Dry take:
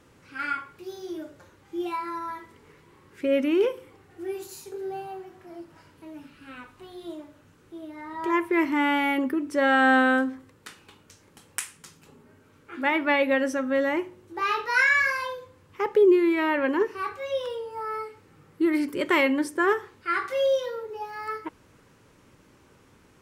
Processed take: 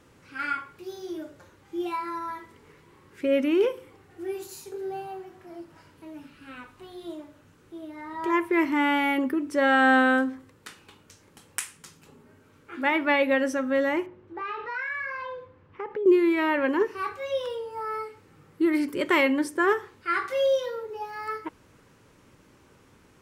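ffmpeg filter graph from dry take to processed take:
ffmpeg -i in.wav -filter_complex "[0:a]asettb=1/sr,asplit=3[link_01][link_02][link_03];[link_01]atrim=end=14.064[link_04];[link_02]atrim=start=14.06:end=16.06,asetpts=PTS-STARTPTS,afade=type=in:duration=0.004:curve=qsin,afade=type=out:start_time=1.996:duration=0.004:curve=qsin,lowpass=2300,acompressor=threshold=-32dB:ratio=3:attack=3.2:release=140:knee=1:detection=peak[link_05];[link_03]atrim=start=16.056[link_06];[link_04][link_05]acrossfade=duration=0.004:curve1=hsin:curve2=qsin[link_07];[link_07][link_06]acrossfade=duration=0.004:curve1=qsin:curve2=hsin" out.wav

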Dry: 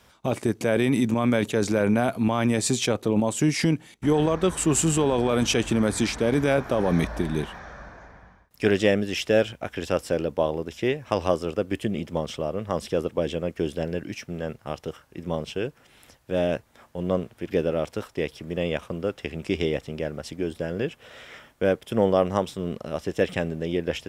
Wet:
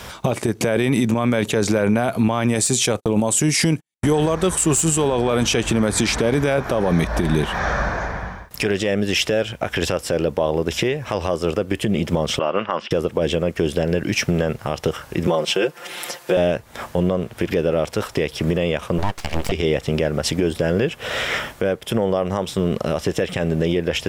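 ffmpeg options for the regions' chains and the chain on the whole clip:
ffmpeg -i in.wav -filter_complex "[0:a]asettb=1/sr,asplit=3[link_01][link_02][link_03];[link_01]atrim=end=2.554[link_04];[link_02]atrim=start=2.55:end=5.08,asetpts=PTS-STARTPTS,afade=type=in:duration=0.004:curve=qsin,afade=type=out:start_time=2.526:duration=0.004:curve=qsin,agate=range=-56dB:threshold=-36dB:ratio=16:release=100:detection=peak,equalizer=frequency=9400:width=0.79:gain=9,aeval=exprs='clip(val(0),-1,0.266)':channel_layout=same[link_05];[link_03]atrim=start=5.076[link_06];[link_04][link_05]acrossfade=duration=0.004:curve1=hsin:curve2=qsin[link_07];[link_07][link_06]acrossfade=duration=0.004:curve1=qsin:curve2=hsin,asettb=1/sr,asplit=3[link_08][link_09][link_10];[link_08]atrim=end=12.394[link_11];[link_09]atrim=start=12.39:end=12.91,asetpts=PTS-STARTPTS,afade=type=in:duration=0.004:curve=qsin,afade=type=out:start_time=0.516:duration=0.004:curve=qsin,agate=range=-33dB:threshold=-33dB:ratio=3:release=100:detection=peak,highpass=330,equalizer=frequency=450:width_type=q:width=4:gain=-8,equalizer=frequency=660:width_type=q:width=4:gain=-3,equalizer=frequency=1000:width_type=q:width=4:gain=4,equalizer=frequency=1400:width_type=q:width=4:gain=7,equalizer=frequency=2800:width_type=q:width=4:gain=8,equalizer=frequency=4000:width_type=q:width=4:gain=-9,lowpass=frequency=4300:width=0.5412,lowpass=frequency=4300:width=1.3066[link_12];[link_10]atrim=start=12.906[link_13];[link_11][link_12]acrossfade=duration=0.004:curve1=hsin:curve2=qsin[link_14];[link_14][link_13]acrossfade=duration=0.004:curve1=qsin:curve2=hsin,asettb=1/sr,asplit=3[link_15][link_16][link_17];[link_15]atrim=end=15.274[link_18];[link_16]atrim=start=15.27:end=16.37,asetpts=PTS-STARTPTS,afade=type=in:duration=0.004:curve=qsin,afade=type=out:start_time=1.096:duration=0.004:curve=qsin,highpass=310,aecho=1:1:5.7:0.85,atrim=end_sample=48510[link_19];[link_17]atrim=start=16.366[link_20];[link_18][link_19]acrossfade=duration=0.004:curve1=hsin:curve2=qsin[link_21];[link_21][link_20]acrossfade=duration=0.004:curve1=qsin:curve2=hsin,asettb=1/sr,asplit=3[link_22][link_23][link_24];[link_22]atrim=end=18.984[link_25];[link_23]atrim=start=18.98:end=19.52,asetpts=PTS-STARTPTS,afade=type=in:duration=0.004:curve=qsin,afade=type=out:start_time=0.536:duration=0.004:curve=qsin,highpass=84,aeval=exprs='abs(val(0))':channel_layout=same[link_26];[link_24]atrim=start=19.516[link_27];[link_25][link_26]acrossfade=duration=0.004:curve1=hsin:curve2=qsin[link_28];[link_28][link_27]acrossfade=duration=0.004:curve1=qsin:curve2=hsin,equalizer=frequency=270:width=3:gain=-4,acompressor=threshold=-36dB:ratio=6,alimiter=level_in=29dB:limit=-1dB:release=50:level=0:latency=1,volume=-7.5dB" out.wav

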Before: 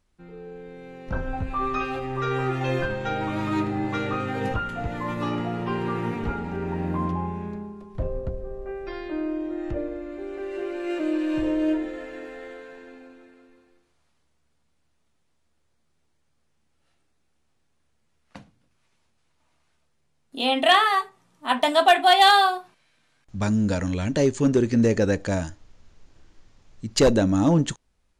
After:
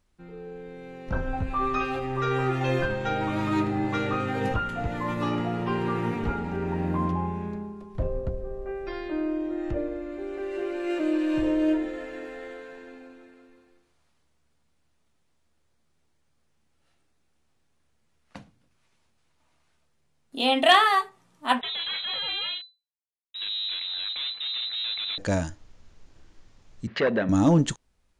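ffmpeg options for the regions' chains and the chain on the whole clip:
ffmpeg -i in.wav -filter_complex "[0:a]asettb=1/sr,asplit=3[link_01][link_02][link_03];[link_01]atrim=end=21.614[link_04];[link_02]atrim=start=21.61:end=25.18,asetpts=PTS-STARTPTS,afade=type=in:duration=0.004:curve=qsin,afade=type=out:start_time=3.566:duration=0.004:curve=qsin,aeval=exprs='(tanh(35.5*val(0)+0.8)-tanh(0.8))/35.5':channel_layout=same,acrusher=bits=6:mix=0:aa=0.5,lowpass=frequency=3400:width_type=q:width=0.5098,lowpass=frequency=3400:width_type=q:width=0.6013,lowpass=frequency=3400:width_type=q:width=0.9,lowpass=frequency=3400:width_type=q:width=2.563,afreqshift=-4000[link_05];[link_03]atrim=start=25.176[link_06];[link_04][link_05]acrossfade=duration=0.004:curve1=hsin:curve2=qsin[link_07];[link_07][link_06]acrossfade=duration=0.004:curve1=qsin:curve2=hsin,asettb=1/sr,asplit=3[link_08][link_09][link_10];[link_08]atrim=end=26.874[link_11];[link_09]atrim=start=26.87:end=27.29,asetpts=PTS-STARTPTS,afade=type=in:duration=0.004:curve=qsin,afade=type=out:start_time=0.416:duration=0.004:curve=qsin,acompressor=threshold=-25dB:ratio=6:attack=3.2:release=140:knee=1:detection=peak,aeval=exprs='0.15*sin(PI/2*1.78*val(0)/0.15)':channel_layout=same,highpass=220,equalizer=frequency=300:width_type=q:width=4:gain=-9,equalizer=frequency=830:width_type=q:width=4:gain=-7,equalizer=frequency=1800:width_type=q:width=4:gain=10,lowpass=frequency=3200:width=0.5412,lowpass=frequency=3200:width=1.3066[link_12];[link_10]atrim=start=27.286[link_13];[link_11][link_12]acrossfade=duration=0.004:curve1=hsin:curve2=qsin[link_14];[link_14][link_13]acrossfade=duration=0.004:curve1=qsin:curve2=hsin" out.wav

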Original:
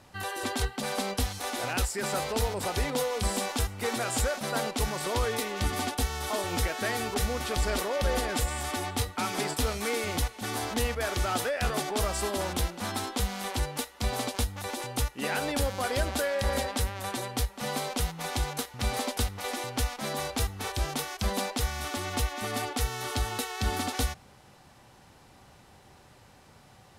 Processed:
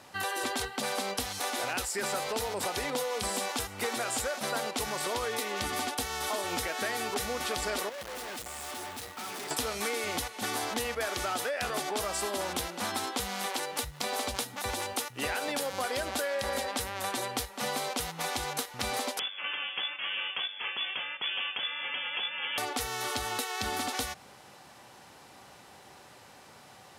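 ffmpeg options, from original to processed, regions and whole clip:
ffmpeg -i in.wav -filter_complex "[0:a]asettb=1/sr,asplit=3[link_01][link_02][link_03];[link_01]atrim=end=7.894[link_04];[link_02]atrim=start=7.89:end=9.51,asetpts=PTS-STARTPTS,afade=type=in:duration=0.004:curve=qsin,afade=type=out:start_time=1.616:duration=0.004:curve=qsin,asplit=2[link_05][link_06];[link_06]adelay=25,volume=-13.5dB[link_07];[link_05][link_07]amix=inputs=2:normalize=0,atrim=end_sample=71442,aeval=exprs='(tanh(112*val(0)+0.65)-tanh(0.65))/112':channel_layout=same,acrusher=bits=2:mode=log:mix=0:aa=0.000001[link_08];[link_03]atrim=start=9.506[link_09];[link_04][link_08]acrossfade=duration=0.004:curve1=hsin:curve2=qsin[link_10];[link_10][link_09]acrossfade=duration=0.004:curve1=qsin:curve2=hsin,asettb=1/sr,asplit=3[link_11][link_12][link_13];[link_11]atrim=end=13.464[link_14];[link_12]atrim=start=13.46:end=15.73,asetpts=PTS-STARTPTS,afade=type=in:duration=0.004:curve=qsin,afade=type=out:start_time=2.266:duration=0.004:curve=qsin,aeval=exprs='sgn(val(0))*max(abs(val(0))-0.0015,0)':channel_layout=same,acompressor=mode=upward:threshold=-48dB:ratio=2.5:attack=3.2:release=140:knee=2.83:detection=peak,acrossover=split=190[link_15][link_16];[link_15]adelay=260[link_17];[link_17][link_16]amix=inputs=2:normalize=0,atrim=end_sample=100107[link_18];[link_13]atrim=start=15.726[link_19];[link_14][link_18]acrossfade=duration=0.004:curve1=hsin:curve2=qsin[link_20];[link_20][link_19]acrossfade=duration=0.004:curve1=qsin:curve2=hsin,asettb=1/sr,asplit=3[link_21][link_22][link_23];[link_21]atrim=end=19.194[link_24];[link_22]atrim=start=19.19:end=22.58,asetpts=PTS-STARTPTS,afade=type=in:duration=0.004:curve=qsin,afade=type=out:start_time=3.386:duration=0.004:curve=qsin,lowshelf=frequency=380:gain=-8.5,aeval=exprs='(tanh(20*val(0)+0.4)-tanh(0.4))/20':channel_layout=same,lowpass=frequency=3000:width_type=q:width=0.5098,lowpass=frequency=3000:width_type=q:width=0.6013,lowpass=frequency=3000:width_type=q:width=0.9,lowpass=frequency=3000:width_type=q:width=2.563,afreqshift=-3500[link_25];[link_23]atrim=start=22.576[link_26];[link_24][link_25]acrossfade=duration=0.004:curve1=hsin:curve2=qsin[link_27];[link_27][link_26]acrossfade=duration=0.004:curve1=qsin:curve2=hsin,highpass=frequency=370:poles=1,acompressor=threshold=-34dB:ratio=6,volume=5dB" out.wav

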